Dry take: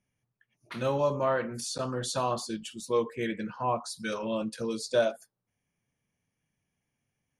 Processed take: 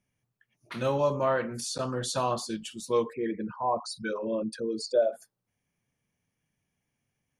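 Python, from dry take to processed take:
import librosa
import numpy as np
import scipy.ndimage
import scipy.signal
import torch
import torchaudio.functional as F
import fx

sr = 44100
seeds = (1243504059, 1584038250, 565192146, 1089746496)

y = fx.envelope_sharpen(x, sr, power=2.0, at=(3.12, 5.12), fade=0.02)
y = y * 10.0 ** (1.0 / 20.0)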